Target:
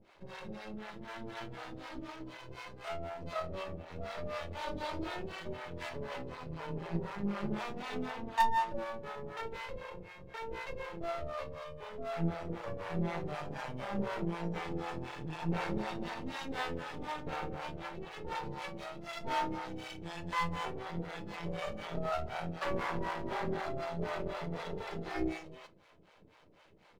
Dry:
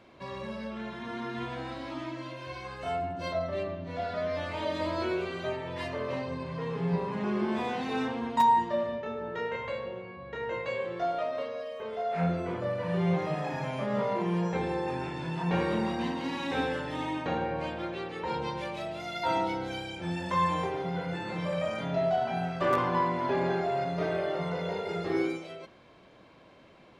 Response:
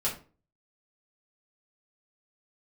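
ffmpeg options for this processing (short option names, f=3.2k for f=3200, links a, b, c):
-filter_complex "[0:a]asetrate=42845,aresample=44100,atempo=1.0293,aeval=exprs='max(val(0),0)':c=same,acrossover=split=530[a][b];[a]aeval=exprs='val(0)*(1-1/2+1/2*cos(2*PI*4*n/s))':c=same[c];[b]aeval=exprs='val(0)*(1-1/2-1/2*cos(2*PI*4*n/s))':c=same[d];[c][d]amix=inputs=2:normalize=0,asplit=2[e][f];[1:a]atrim=start_sample=2205,asetrate=88200,aresample=44100[g];[f][g]afir=irnorm=-1:irlink=0,volume=-8dB[h];[e][h]amix=inputs=2:normalize=0"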